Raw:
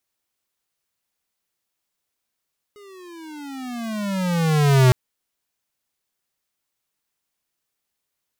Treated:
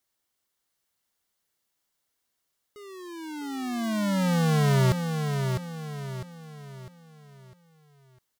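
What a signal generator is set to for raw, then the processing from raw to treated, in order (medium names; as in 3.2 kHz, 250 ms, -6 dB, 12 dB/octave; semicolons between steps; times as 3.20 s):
gliding synth tone square, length 2.16 s, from 418 Hz, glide -21 st, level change +33 dB, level -12 dB
band-stop 2.5 kHz, Q 10; compression 3:1, threshold -24 dBFS; on a send: feedback delay 653 ms, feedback 41%, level -6 dB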